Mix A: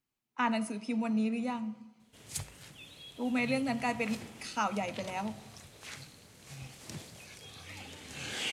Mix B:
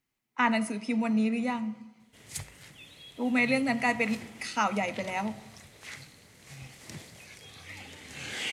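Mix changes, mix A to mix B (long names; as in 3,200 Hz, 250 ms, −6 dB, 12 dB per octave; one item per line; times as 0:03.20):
speech +4.0 dB
master: add parametric band 2,000 Hz +7.5 dB 0.3 octaves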